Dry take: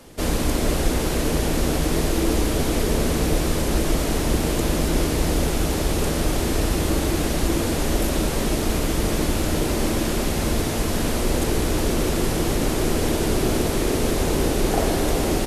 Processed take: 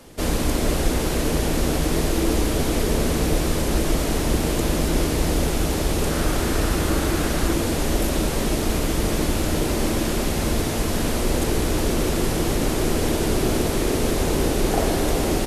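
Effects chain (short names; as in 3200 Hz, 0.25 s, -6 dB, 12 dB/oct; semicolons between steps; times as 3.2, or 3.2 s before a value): 6.11–7.53 bell 1400 Hz +5.5 dB 0.69 oct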